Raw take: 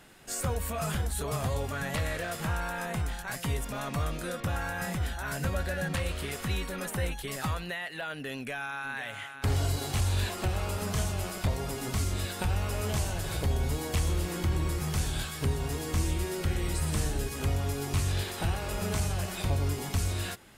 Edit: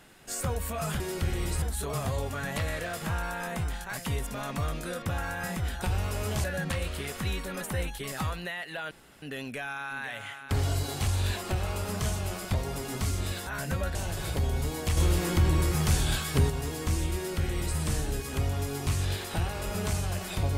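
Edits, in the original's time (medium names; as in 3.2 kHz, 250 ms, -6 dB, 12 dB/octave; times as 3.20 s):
5.20–5.68 s: swap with 12.40–13.02 s
8.15 s: insert room tone 0.31 s
14.04–15.57 s: gain +5 dB
16.23–16.85 s: copy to 1.00 s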